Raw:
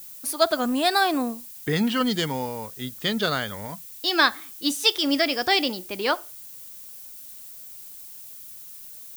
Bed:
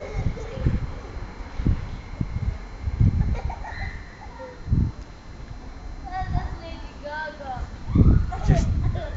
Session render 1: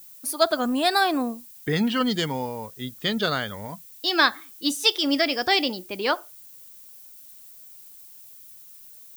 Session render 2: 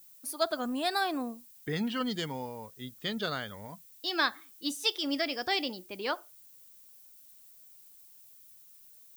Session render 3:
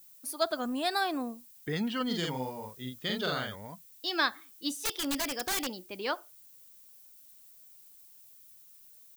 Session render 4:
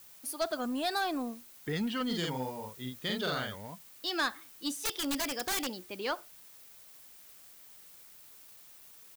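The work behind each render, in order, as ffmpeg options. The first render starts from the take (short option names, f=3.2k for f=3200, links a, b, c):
-af "afftdn=nr=6:nf=-42"
-af "volume=-9dB"
-filter_complex "[0:a]asplit=3[a][b][c];[a]afade=t=out:st=2.09:d=0.02[d];[b]asplit=2[e][f];[f]adelay=47,volume=-2dB[g];[e][g]amix=inputs=2:normalize=0,afade=t=in:st=2.09:d=0.02,afade=t=out:st=3.54:d=0.02[h];[c]afade=t=in:st=3.54:d=0.02[i];[d][h][i]amix=inputs=3:normalize=0,asettb=1/sr,asplit=3[j][k][l];[j]atrim=end=4.734[m];[k]atrim=start=4.73:end=5.67,asetpts=PTS-STARTPTS,afade=t=in:d=0.004:c=qsin,afade=t=out:st=0.936:d=0.004:c=qsin,aeval=exprs='(mod(16.8*val(0)+1,2)-1)/16.8':c=same[n];[l]atrim=start=5.666[o];[m][n]acrossfade=d=0.004:c1=hsin:c2=qsin[p];[p][o]acrossfade=d=0.004:c1=qsin:c2=hsin"
-af "asoftclip=type=tanh:threshold=-23.5dB,acrusher=bits=8:mix=0:aa=0.000001"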